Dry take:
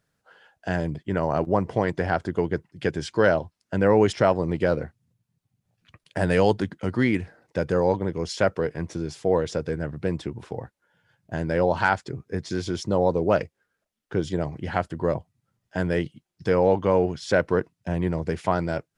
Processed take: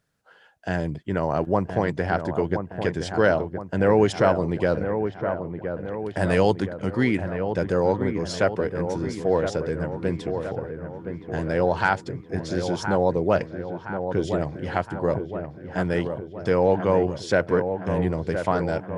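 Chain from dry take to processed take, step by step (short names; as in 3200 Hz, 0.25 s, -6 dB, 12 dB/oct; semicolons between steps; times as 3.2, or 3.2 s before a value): dark delay 1.018 s, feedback 55%, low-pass 1800 Hz, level -7.5 dB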